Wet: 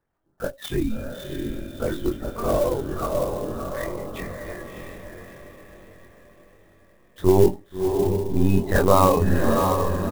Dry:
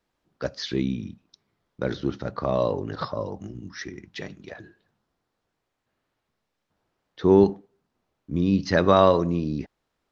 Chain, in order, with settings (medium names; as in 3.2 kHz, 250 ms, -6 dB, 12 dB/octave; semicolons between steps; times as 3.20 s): loudest bins only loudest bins 64; LPC vocoder at 8 kHz pitch kept; doubling 22 ms -4 dB; echo that smears into a reverb 650 ms, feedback 47%, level -4 dB; sampling jitter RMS 0.032 ms